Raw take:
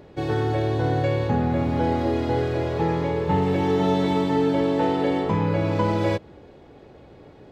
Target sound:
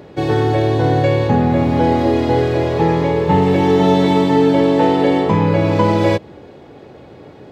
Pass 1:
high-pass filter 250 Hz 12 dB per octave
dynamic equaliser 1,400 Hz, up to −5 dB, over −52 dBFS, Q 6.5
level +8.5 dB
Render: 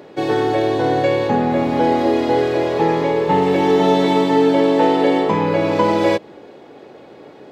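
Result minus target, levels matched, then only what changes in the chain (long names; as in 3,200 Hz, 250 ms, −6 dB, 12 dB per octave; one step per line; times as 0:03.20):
125 Hz band −8.0 dB
change: high-pass filter 89 Hz 12 dB per octave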